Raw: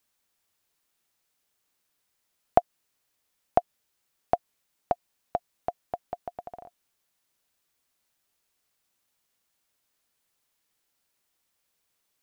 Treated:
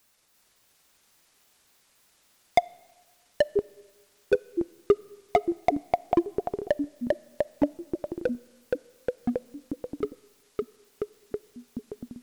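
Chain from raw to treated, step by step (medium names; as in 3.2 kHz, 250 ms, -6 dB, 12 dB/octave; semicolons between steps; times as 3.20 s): pitch shift switched off and on -9.5 st, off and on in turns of 139 ms; band-stop 3.2 kHz, Q 23; in parallel at +3 dB: peak limiter -15 dBFS, peak gain reduction 11.5 dB; on the sum: hard clipper -14.5 dBFS, distortion -7 dB; ever faster or slower copies 344 ms, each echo -3 st, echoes 3; on a send at -24 dB: reverberation RT60 1.3 s, pre-delay 5 ms; on the sum: trim +3 dB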